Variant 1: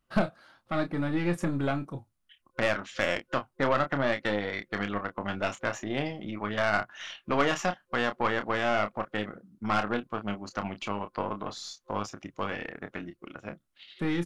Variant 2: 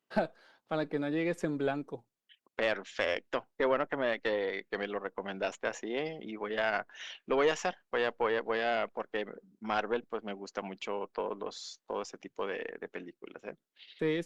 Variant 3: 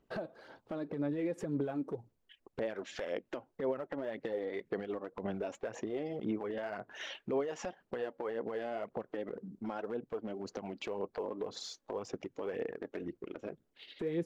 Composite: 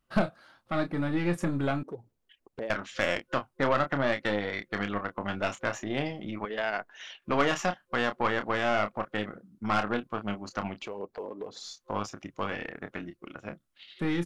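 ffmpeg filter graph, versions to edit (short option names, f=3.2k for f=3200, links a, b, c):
-filter_complex "[2:a]asplit=2[a][b];[0:a]asplit=4[c][d][e][f];[c]atrim=end=1.832[g];[a]atrim=start=1.828:end=2.702[h];[d]atrim=start=2.698:end=6.452[i];[1:a]atrim=start=6.448:end=7.222[j];[e]atrim=start=7.218:end=10.93[k];[b]atrim=start=10.69:end=11.77[l];[f]atrim=start=11.53[m];[g][h]acrossfade=d=0.004:c1=hsin:c2=hsin[n];[n][i]acrossfade=d=0.004:c1=hsin:c2=hsin[o];[o][j]acrossfade=d=0.004:c1=hsin:c2=hsin[p];[p][k]acrossfade=d=0.004:c1=hsin:c2=hsin[q];[q][l]acrossfade=d=0.24:c1=tri:c2=tri[r];[r][m]acrossfade=d=0.24:c1=tri:c2=tri"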